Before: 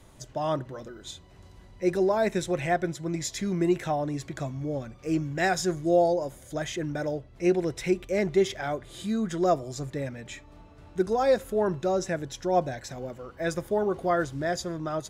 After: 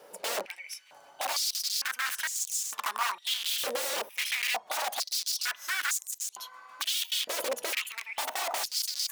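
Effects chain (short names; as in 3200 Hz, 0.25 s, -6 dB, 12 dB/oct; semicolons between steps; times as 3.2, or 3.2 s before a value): speed glide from 149% -> 182%; wrapped overs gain 28.5 dB; stepped high-pass 2.2 Hz 510–6900 Hz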